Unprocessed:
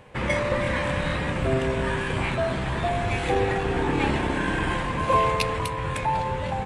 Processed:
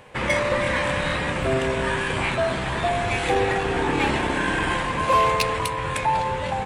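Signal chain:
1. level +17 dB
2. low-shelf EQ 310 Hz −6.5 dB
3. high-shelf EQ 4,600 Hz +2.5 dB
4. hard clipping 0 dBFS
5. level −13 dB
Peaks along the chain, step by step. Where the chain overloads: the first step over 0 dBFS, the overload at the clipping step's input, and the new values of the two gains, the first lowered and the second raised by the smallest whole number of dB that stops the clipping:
+8.5, +8.5, +9.5, 0.0, −13.0 dBFS
step 1, 9.5 dB
step 1 +7 dB, step 5 −3 dB

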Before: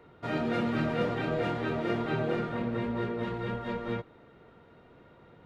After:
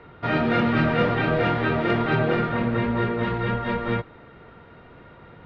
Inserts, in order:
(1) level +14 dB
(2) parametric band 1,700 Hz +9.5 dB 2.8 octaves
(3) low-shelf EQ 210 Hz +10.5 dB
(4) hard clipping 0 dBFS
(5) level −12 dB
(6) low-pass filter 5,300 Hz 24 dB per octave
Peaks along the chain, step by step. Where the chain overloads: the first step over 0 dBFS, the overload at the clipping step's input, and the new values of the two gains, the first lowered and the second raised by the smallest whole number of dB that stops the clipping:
−1.5, +3.0, +5.5, 0.0, −12.0, −11.5 dBFS
step 2, 5.5 dB
step 1 +8 dB, step 5 −6 dB

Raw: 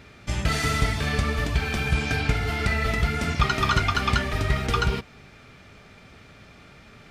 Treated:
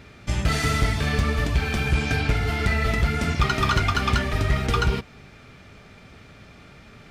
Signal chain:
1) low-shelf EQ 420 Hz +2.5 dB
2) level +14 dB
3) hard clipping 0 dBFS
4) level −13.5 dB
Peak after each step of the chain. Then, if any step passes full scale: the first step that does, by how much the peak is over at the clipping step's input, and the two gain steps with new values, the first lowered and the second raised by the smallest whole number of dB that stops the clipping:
−6.5, +7.5, 0.0, −13.5 dBFS
step 2, 7.5 dB
step 2 +6 dB, step 4 −5.5 dB

